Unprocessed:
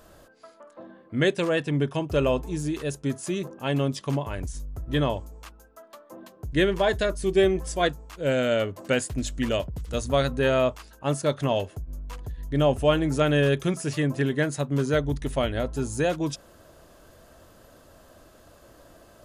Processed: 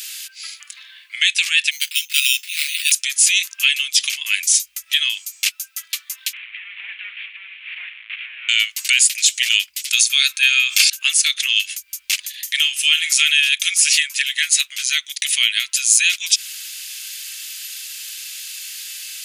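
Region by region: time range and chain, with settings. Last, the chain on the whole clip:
1.71–2.92 passive tone stack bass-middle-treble 5-5-5 + sample-rate reducer 6300 Hz
6.33–8.49 delta modulation 16 kbps, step -37.5 dBFS + LPF 1000 Hz 6 dB/oct + doubler 37 ms -13 dB
9.88–10.9 notch comb 980 Hz + sustainer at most 37 dB/s
12.29–13.29 HPF 450 Hz 6 dB/oct + flutter echo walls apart 7.8 m, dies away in 0.2 s
whole clip: compressor, threshold -30 dBFS; elliptic high-pass 2300 Hz, stop band 80 dB; maximiser +32.5 dB; gain -1 dB

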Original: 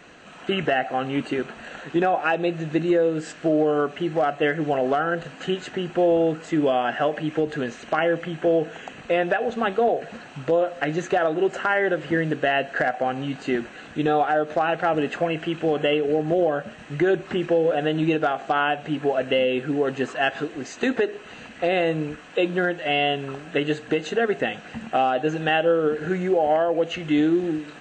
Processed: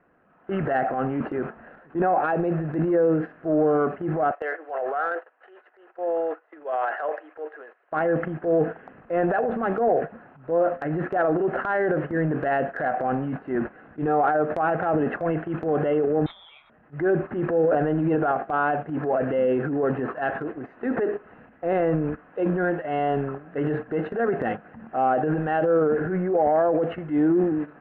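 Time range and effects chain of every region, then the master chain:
4.31–7.92 gate -36 dBFS, range -13 dB + Bessel high-pass 680 Hz, order 8
16.26–16.7 flutter echo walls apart 10.7 m, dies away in 0.27 s + inverted band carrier 3900 Hz
whole clip: LPF 1600 Hz 24 dB/oct; gate -31 dBFS, range -13 dB; transient shaper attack -8 dB, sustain +8 dB

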